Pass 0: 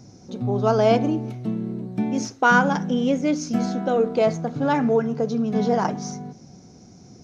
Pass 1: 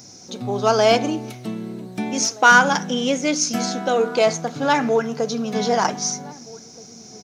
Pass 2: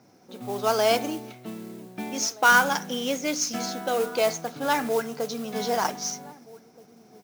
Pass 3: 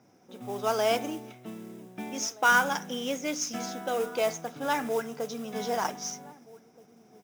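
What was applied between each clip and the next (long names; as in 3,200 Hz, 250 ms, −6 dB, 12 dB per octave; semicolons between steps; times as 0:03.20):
spectral tilt +3.5 dB per octave; in parallel at −9.5 dB: hard clipping −16.5 dBFS, distortion −11 dB; on the sum: slap from a distant wall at 270 metres, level −21 dB; level +2.5 dB
low-pass that shuts in the quiet parts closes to 1,700 Hz, open at −16 dBFS; high-pass filter 240 Hz 6 dB per octave; noise that follows the level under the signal 16 dB; level −5.5 dB
high-shelf EQ 9,900 Hz −3.5 dB; notch filter 4,300 Hz, Q 5.6; level −4 dB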